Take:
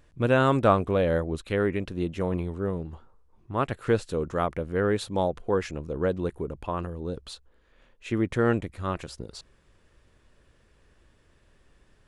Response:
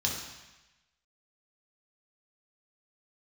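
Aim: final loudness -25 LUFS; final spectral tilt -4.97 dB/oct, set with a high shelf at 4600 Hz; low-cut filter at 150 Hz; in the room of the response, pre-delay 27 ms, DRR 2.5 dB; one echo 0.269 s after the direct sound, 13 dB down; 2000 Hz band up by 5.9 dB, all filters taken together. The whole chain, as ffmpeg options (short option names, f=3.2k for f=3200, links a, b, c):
-filter_complex "[0:a]highpass=150,equalizer=f=2k:t=o:g=9,highshelf=f=4.6k:g=-4.5,aecho=1:1:269:0.224,asplit=2[a][b];[1:a]atrim=start_sample=2205,adelay=27[c];[b][c]afir=irnorm=-1:irlink=0,volume=-9dB[d];[a][d]amix=inputs=2:normalize=0,volume=-0.5dB"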